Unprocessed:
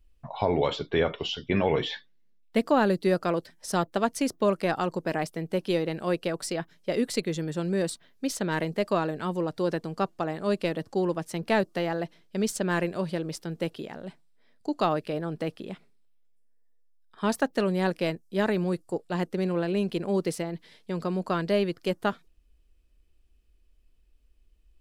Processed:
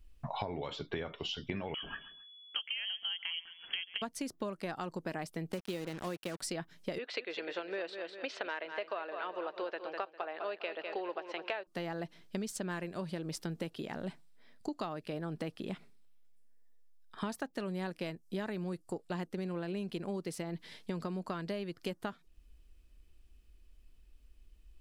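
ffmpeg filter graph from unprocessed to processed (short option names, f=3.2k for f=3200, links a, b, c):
-filter_complex "[0:a]asettb=1/sr,asplit=3[a][b][c];[a]atrim=end=1.744[d];[b]atrim=start=1.74:end=4.02,asetpts=PTS-STARTPTS,afade=t=in:d=0.004:c=qsin,afade=t=out:st=2.276:d=0.004:c=qsin,acompressor=threshold=-26dB:ratio=2:attack=3.2:release=140:knee=1:detection=peak,lowpass=f=2.9k:t=q:w=0.5098,lowpass=f=2.9k:t=q:w=0.6013,lowpass=f=2.9k:t=q:w=0.9,lowpass=f=2.9k:t=q:w=2.563,afreqshift=-3400,aecho=1:1:135|270:0.0891|0.025,atrim=end_sample=100548[e];[c]atrim=start=4.016[f];[d][e]acrossfade=d=0.004:c1=hsin:c2=qsin[g];[g][f]acrossfade=d=0.004:c1=qsin:c2=hsin,asettb=1/sr,asplit=3[h][i][j];[h]atrim=end=5.524[k];[i]atrim=start=5.52:end=6.41,asetpts=PTS-STARTPTS,afade=t=in:d=0.004:c=qsin,afade=t=out:st=0.886:d=0.004:c=qsin,highpass=f=120:w=0.5412,highpass=f=120:w=1.3066,acrusher=bits=5:mix=0:aa=0.5[l];[j]atrim=start=6.406[m];[k][l]acrossfade=d=0.004:c1=hsin:c2=qsin[n];[n][m]acrossfade=d=0.004:c1=qsin:c2=hsin,asettb=1/sr,asplit=3[o][p][q];[o]atrim=end=6.984[r];[p]atrim=start=6.98:end=11.67,asetpts=PTS-STARTPTS,afade=t=in:d=0.004:c=qsin,afade=t=out:st=4.686:d=0.004:c=qsin,highpass=f=430:w=0.5412,highpass=f=430:w=1.3066,equalizer=f=650:t=q:w=4:g=3,equalizer=f=1.5k:t=q:w=4:g=4,equalizer=f=2.6k:t=q:w=4:g=6,lowpass=f=3.8k:w=0.5412,lowpass=f=3.8k:w=1.3066,aecho=1:1:201|402|603|804:0.282|0.11|0.0429|0.0167,atrim=end_sample=206829[s];[q]atrim=start=11.666[t];[r][s]acrossfade=d=0.004:c1=hsin:c2=qsin[u];[u][t]acrossfade=d=0.004:c1=qsin:c2=hsin,equalizer=f=490:t=o:w=0.88:g=-3.5,acompressor=threshold=-38dB:ratio=16,volume=3.5dB"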